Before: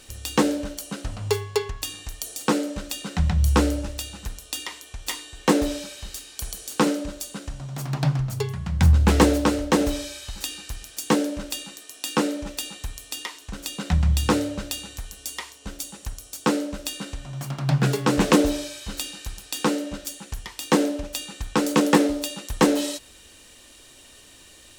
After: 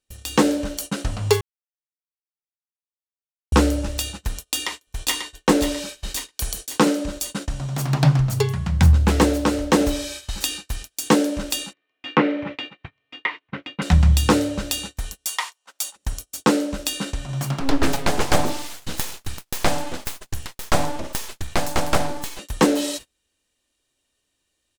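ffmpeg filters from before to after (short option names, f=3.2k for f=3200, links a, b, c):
-filter_complex "[0:a]asplit=2[a][b];[b]afade=t=in:st=4.33:d=0.01,afade=t=out:st=5.3:d=0.01,aecho=0:1:540|1080|1620|2160|2700|3240:0.595662|0.297831|0.148916|0.0744578|0.0372289|0.0186144[c];[a][c]amix=inputs=2:normalize=0,asettb=1/sr,asplit=3[d][e][f];[d]atrim=end=11.734[g];[e]atrim=start=11.73:end=13.82,asetpts=PTS-STARTPTS,afade=t=in:d=0.004:c=qsin,afade=t=out:st=2.086:d=0.004:c=qsin,highpass=f=110:w=0.5412,highpass=f=110:w=1.3066,equalizer=f=140:t=q:w=4:g=6,equalizer=f=200:t=q:w=4:g=-3,equalizer=f=1.1k:t=q:w=4:g=3,equalizer=f=2.1k:t=q:w=4:g=9,lowpass=f=2.9k:w=0.5412,lowpass=f=2.9k:w=1.3066[h];[f]atrim=start=13.816[i];[g][h]acrossfade=d=0.004:c1=hsin:c2=qsin[j];[j][i]acrossfade=d=0.004:c1=qsin:c2=hsin,asettb=1/sr,asplit=3[k][l][m];[k]atrim=end=15.264[n];[l]atrim=start=15.26:end=15.96,asetpts=PTS-STARTPTS,afade=t=in:d=0.004:c=qsin,afade=t=out:st=0.696:d=0.004:c=qsin,highpass=f=900:t=q:w=1.7[o];[m]atrim=start=15.956[p];[n][o]acrossfade=d=0.004:c1=hsin:c2=qsin[q];[q][p]acrossfade=d=0.004:c1=qsin:c2=hsin,asettb=1/sr,asplit=3[r][s][t];[r]atrim=end=17.604[u];[s]atrim=start=17.6:end=22.39,asetpts=PTS-STARTPTS,afade=t=in:d=0.004:c=qsin,afade=t=out:st=4.786:d=0.004:c=qsin,aeval=exprs='abs(val(0))':c=same[v];[t]atrim=start=22.386[w];[u][v]acrossfade=d=0.004:c1=hsin:c2=qsin[x];[x][w]acrossfade=d=0.004:c1=qsin:c2=hsin,asplit=3[y][z][aa];[y]atrim=end=1.41,asetpts=PTS-STARTPTS,afade=t=out:st=1.406:d=0.004:c=hsin[ab];[z]atrim=start=1.41:end=3.52,asetpts=PTS-STARTPTS,volume=0[ac];[aa]atrim=start=3.52,asetpts=PTS-STARTPTS,afade=t=in:d=0.004:c=hsin[ad];[ab][ac][ad]concat=n=3:v=0:a=1,agate=range=-32dB:threshold=-37dB:ratio=16:detection=peak,dynaudnorm=f=120:g=5:m=8dB,volume=-1dB"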